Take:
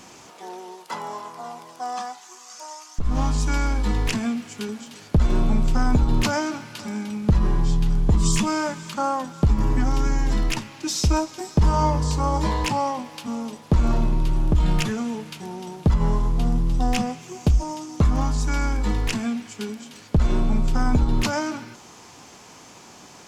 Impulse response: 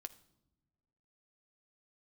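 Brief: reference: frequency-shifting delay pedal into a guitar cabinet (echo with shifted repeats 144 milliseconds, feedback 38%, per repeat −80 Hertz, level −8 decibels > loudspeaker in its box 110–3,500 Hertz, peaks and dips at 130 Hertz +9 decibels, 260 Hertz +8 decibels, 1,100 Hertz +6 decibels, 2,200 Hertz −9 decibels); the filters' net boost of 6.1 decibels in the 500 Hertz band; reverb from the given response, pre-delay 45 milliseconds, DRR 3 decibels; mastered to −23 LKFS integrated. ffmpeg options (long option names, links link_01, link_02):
-filter_complex "[0:a]equalizer=frequency=500:width_type=o:gain=7,asplit=2[link_01][link_02];[1:a]atrim=start_sample=2205,adelay=45[link_03];[link_02][link_03]afir=irnorm=-1:irlink=0,volume=2dB[link_04];[link_01][link_04]amix=inputs=2:normalize=0,asplit=5[link_05][link_06][link_07][link_08][link_09];[link_06]adelay=144,afreqshift=-80,volume=-8dB[link_10];[link_07]adelay=288,afreqshift=-160,volume=-16.4dB[link_11];[link_08]adelay=432,afreqshift=-240,volume=-24.8dB[link_12];[link_09]adelay=576,afreqshift=-320,volume=-33.2dB[link_13];[link_05][link_10][link_11][link_12][link_13]amix=inputs=5:normalize=0,highpass=110,equalizer=frequency=130:width_type=q:width=4:gain=9,equalizer=frequency=260:width_type=q:width=4:gain=8,equalizer=frequency=1100:width_type=q:width=4:gain=6,equalizer=frequency=2200:width_type=q:width=4:gain=-9,lowpass=frequency=3500:width=0.5412,lowpass=frequency=3500:width=1.3066,volume=-3.5dB"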